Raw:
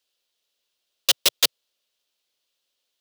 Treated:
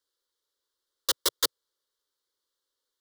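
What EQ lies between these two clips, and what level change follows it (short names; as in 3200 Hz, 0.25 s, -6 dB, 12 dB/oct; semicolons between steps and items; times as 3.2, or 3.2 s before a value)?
bell 6000 Hz -3.5 dB 0.66 oct; high shelf 10000 Hz -7.5 dB; fixed phaser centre 690 Hz, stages 6; 0.0 dB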